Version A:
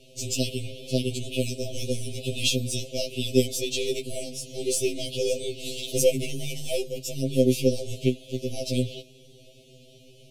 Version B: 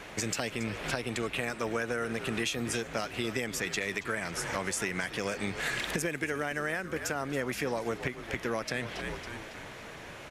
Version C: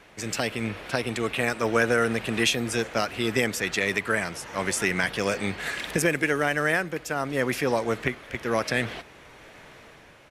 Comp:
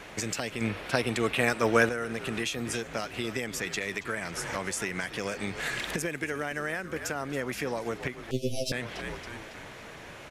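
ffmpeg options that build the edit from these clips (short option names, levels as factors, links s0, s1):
-filter_complex "[1:a]asplit=3[s0][s1][s2];[s0]atrim=end=0.612[s3];[2:a]atrim=start=0.608:end=1.892[s4];[s1]atrim=start=1.888:end=8.312[s5];[0:a]atrim=start=8.308:end=8.722[s6];[s2]atrim=start=8.718[s7];[s3][s4]acrossfade=d=0.004:c1=hsin:c2=hsin[s8];[s8][s5]acrossfade=d=0.004:c1=hsin:c2=hsin[s9];[s9][s6]acrossfade=d=0.004:c1=hsin:c2=hsin[s10];[s10][s7]acrossfade=d=0.004:c1=hsin:c2=hsin"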